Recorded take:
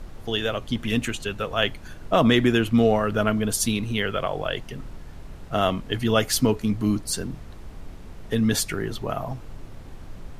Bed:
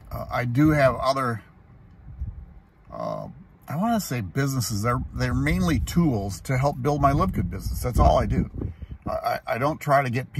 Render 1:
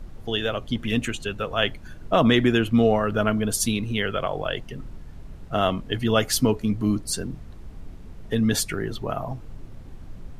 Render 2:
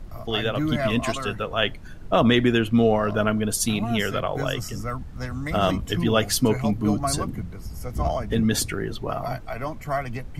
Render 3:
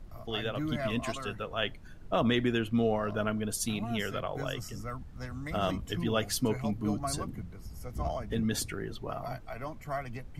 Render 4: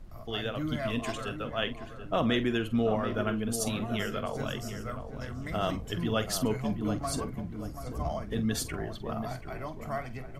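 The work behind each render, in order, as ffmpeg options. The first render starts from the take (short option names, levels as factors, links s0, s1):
-af "afftdn=nr=6:nf=-41"
-filter_complex "[1:a]volume=0.447[s0];[0:a][s0]amix=inputs=2:normalize=0"
-af "volume=0.355"
-filter_complex "[0:a]asplit=2[s0][s1];[s1]adelay=46,volume=0.224[s2];[s0][s2]amix=inputs=2:normalize=0,asplit=2[s3][s4];[s4]adelay=733,lowpass=f=1600:p=1,volume=0.376,asplit=2[s5][s6];[s6]adelay=733,lowpass=f=1600:p=1,volume=0.44,asplit=2[s7][s8];[s8]adelay=733,lowpass=f=1600:p=1,volume=0.44,asplit=2[s9][s10];[s10]adelay=733,lowpass=f=1600:p=1,volume=0.44,asplit=2[s11][s12];[s12]adelay=733,lowpass=f=1600:p=1,volume=0.44[s13];[s3][s5][s7][s9][s11][s13]amix=inputs=6:normalize=0"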